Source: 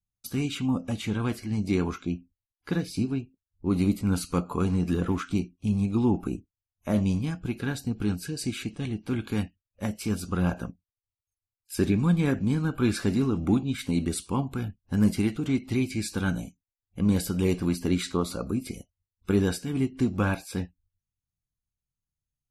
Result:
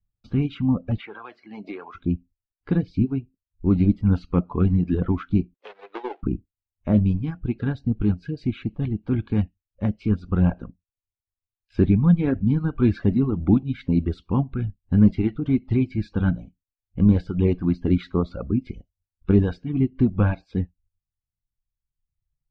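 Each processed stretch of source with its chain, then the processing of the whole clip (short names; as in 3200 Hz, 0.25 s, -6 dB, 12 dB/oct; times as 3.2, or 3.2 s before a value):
0.98–1.95 HPF 730 Hz + high shelf 4600 Hz -12 dB + three-band squash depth 100%
5.54–6.23 switching dead time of 0.24 ms + elliptic high-pass 440 Hz, stop band 70 dB + transient shaper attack +7 dB, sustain -2 dB
whole clip: reverb removal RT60 1.4 s; LPF 3900 Hz 24 dB/oct; tilt -3 dB/oct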